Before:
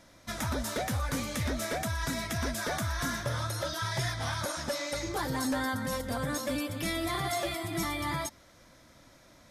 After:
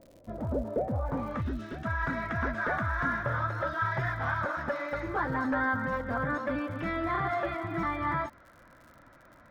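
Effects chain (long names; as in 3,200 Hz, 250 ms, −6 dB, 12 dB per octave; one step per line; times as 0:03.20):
gain on a spectral selection 0:01.41–0:01.85, 420–2,500 Hz −14 dB
low-pass filter sweep 530 Hz → 1,500 Hz, 0:00.84–0:01.51
surface crackle 98 per second −47 dBFS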